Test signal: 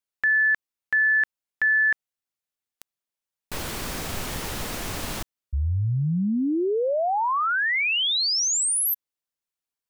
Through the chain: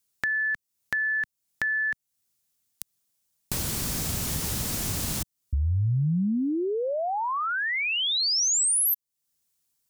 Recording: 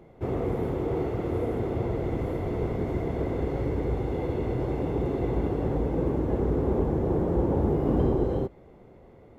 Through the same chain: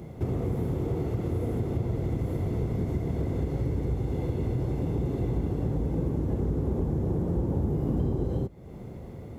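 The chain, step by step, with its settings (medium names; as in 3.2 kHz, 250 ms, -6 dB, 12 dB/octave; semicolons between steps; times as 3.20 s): high-pass 100 Hz 6 dB/octave; tone controls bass +14 dB, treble +12 dB; compression 2.5:1, threshold -36 dBFS; trim +4.5 dB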